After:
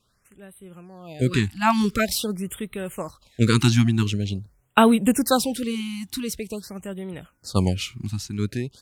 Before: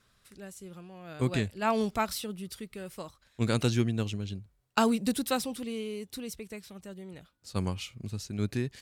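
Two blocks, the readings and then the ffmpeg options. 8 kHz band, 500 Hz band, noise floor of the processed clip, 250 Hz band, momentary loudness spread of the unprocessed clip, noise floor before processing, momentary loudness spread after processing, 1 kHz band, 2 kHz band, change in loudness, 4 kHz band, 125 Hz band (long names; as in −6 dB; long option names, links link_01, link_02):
+9.5 dB, +7.0 dB, −66 dBFS, +9.5 dB, 19 LU, −69 dBFS, 16 LU, +8.5 dB, +9.0 dB, +8.5 dB, +9.0 dB, +9.0 dB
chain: -af "dynaudnorm=framelen=500:gausssize=5:maxgain=11.5dB,afftfilt=real='re*(1-between(b*sr/1024,470*pow(5800/470,0.5+0.5*sin(2*PI*0.46*pts/sr))/1.41,470*pow(5800/470,0.5+0.5*sin(2*PI*0.46*pts/sr))*1.41))':imag='im*(1-between(b*sr/1024,470*pow(5800/470,0.5+0.5*sin(2*PI*0.46*pts/sr))/1.41,470*pow(5800/470,0.5+0.5*sin(2*PI*0.46*pts/sr))*1.41))':win_size=1024:overlap=0.75"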